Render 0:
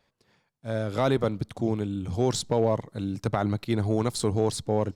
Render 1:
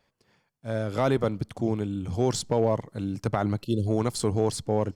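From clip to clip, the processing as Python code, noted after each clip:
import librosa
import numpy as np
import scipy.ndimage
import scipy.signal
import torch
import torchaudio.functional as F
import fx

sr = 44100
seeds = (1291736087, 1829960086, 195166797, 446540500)

y = fx.notch(x, sr, hz=3800.0, q=9.9)
y = fx.spec_box(y, sr, start_s=3.63, length_s=0.24, low_hz=600.0, high_hz=2600.0, gain_db=-30)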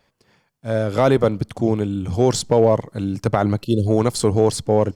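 y = fx.dynamic_eq(x, sr, hz=510.0, q=1.9, threshold_db=-34.0, ratio=4.0, max_db=3)
y = F.gain(torch.from_numpy(y), 7.0).numpy()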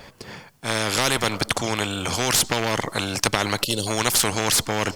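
y = fx.spectral_comp(x, sr, ratio=4.0)
y = F.gain(torch.from_numpy(y), 3.0).numpy()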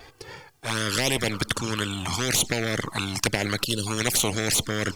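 y = fx.env_flanger(x, sr, rest_ms=2.8, full_db=-16.0)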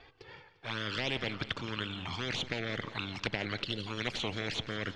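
y = fx.ladder_lowpass(x, sr, hz=4300.0, resonance_pct=30)
y = fx.echo_feedback(y, sr, ms=174, feedback_pct=56, wet_db=-15)
y = F.gain(torch.from_numpy(y), -3.5).numpy()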